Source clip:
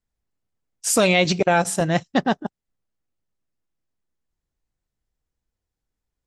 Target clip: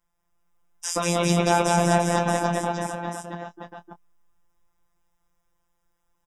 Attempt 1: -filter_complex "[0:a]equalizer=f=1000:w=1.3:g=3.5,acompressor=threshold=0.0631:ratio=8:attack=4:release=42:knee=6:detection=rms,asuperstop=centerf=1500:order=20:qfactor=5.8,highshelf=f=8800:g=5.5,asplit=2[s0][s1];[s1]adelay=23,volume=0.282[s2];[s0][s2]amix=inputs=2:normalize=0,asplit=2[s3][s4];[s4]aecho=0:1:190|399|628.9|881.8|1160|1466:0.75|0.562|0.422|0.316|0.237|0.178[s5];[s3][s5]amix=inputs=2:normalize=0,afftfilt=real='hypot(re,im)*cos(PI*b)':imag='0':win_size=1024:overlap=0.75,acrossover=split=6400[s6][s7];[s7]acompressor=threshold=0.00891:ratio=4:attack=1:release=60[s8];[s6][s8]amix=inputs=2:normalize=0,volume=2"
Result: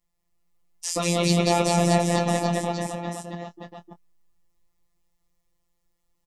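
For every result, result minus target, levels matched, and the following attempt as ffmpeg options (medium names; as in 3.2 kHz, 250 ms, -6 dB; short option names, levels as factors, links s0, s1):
2 kHz band -2.5 dB; 1 kHz band -2.5 dB
-filter_complex "[0:a]equalizer=f=1000:w=1.3:g=3.5,acompressor=threshold=0.0631:ratio=8:attack=4:release=42:knee=6:detection=rms,asuperstop=centerf=4300:order=20:qfactor=5.8,highshelf=f=8800:g=5.5,asplit=2[s0][s1];[s1]adelay=23,volume=0.282[s2];[s0][s2]amix=inputs=2:normalize=0,asplit=2[s3][s4];[s4]aecho=0:1:190|399|628.9|881.8|1160|1466:0.75|0.562|0.422|0.316|0.237|0.178[s5];[s3][s5]amix=inputs=2:normalize=0,afftfilt=real='hypot(re,im)*cos(PI*b)':imag='0':win_size=1024:overlap=0.75,acrossover=split=6400[s6][s7];[s7]acompressor=threshold=0.00891:ratio=4:attack=1:release=60[s8];[s6][s8]amix=inputs=2:normalize=0,volume=2"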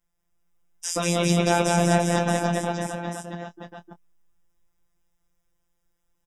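1 kHz band -2.5 dB
-filter_complex "[0:a]equalizer=f=1000:w=1.3:g=12.5,acompressor=threshold=0.0631:ratio=8:attack=4:release=42:knee=6:detection=rms,asuperstop=centerf=4300:order=20:qfactor=5.8,highshelf=f=8800:g=5.5,asplit=2[s0][s1];[s1]adelay=23,volume=0.282[s2];[s0][s2]amix=inputs=2:normalize=0,asplit=2[s3][s4];[s4]aecho=0:1:190|399|628.9|881.8|1160|1466:0.75|0.562|0.422|0.316|0.237|0.178[s5];[s3][s5]amix=inputs=2:normalize=0,afftfilt=real='hypot(re,im)*cos(PI*b)':imag='0':win_size=1024:overlap=0.75,acrossover=split=6400[s6][s7];[s7]acompressor=threshold=0.00891:ratio=4:attack=1:release=60[s8];[s6][s8]amix=inputs=2:normalize=0,volume=2"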